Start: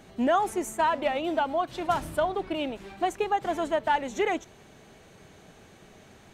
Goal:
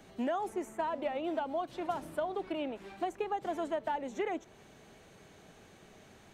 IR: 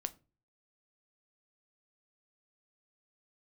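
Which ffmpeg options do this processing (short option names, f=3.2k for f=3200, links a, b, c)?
-filter_complex "[0:a]acrossover=split=180|790|2500[a][b][c][d];[a]acompressor=threshold=-58dB:ratio=4[e];[b]acompressor=threshold=-28dB:ratio=4[f];[c]acompressor=threshold=-39dB:ratio=4[g];[d]acompressor=threshold=-53dB:ratio=4[h];[e][f][g][h]amix=inputs=4:normalize=0,volume=-4dB"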